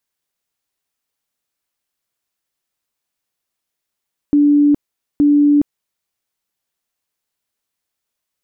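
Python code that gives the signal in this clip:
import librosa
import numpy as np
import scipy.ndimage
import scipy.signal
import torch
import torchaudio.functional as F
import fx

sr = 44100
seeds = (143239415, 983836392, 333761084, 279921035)

y = fx.tone_burst(sr, hz=291.0, cycles=121, every_s=0.87, bursts=2, level_db=-8.0)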